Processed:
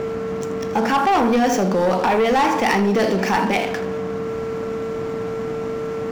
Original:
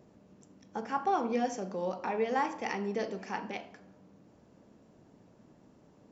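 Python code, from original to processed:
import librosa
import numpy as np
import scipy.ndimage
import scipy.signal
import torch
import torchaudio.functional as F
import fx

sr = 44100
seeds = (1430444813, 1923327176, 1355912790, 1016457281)

y = scipy.signal.medfilt(x, 5)
y = y + 10.0 ** (-45.0 / 20.0) * np.sin(2.0 * np.pi * 450.0 * np.arange(len(y)) / sr)
y = fx.peak_eq(y, sr, hz=440.0, db=-3.0, octaves=0.92)
y = y + 10.0 ** (-15.5 / 20.0) * np.pad(y, (int(81 * sr / 1000.0), 0))[:len(y)]
y = fx.leveller(y, sr, passes=3)
y = fx.env_flatten(y, sr, amount_pct=50)
y = y * 10.0 ** (6.5 / 20.0)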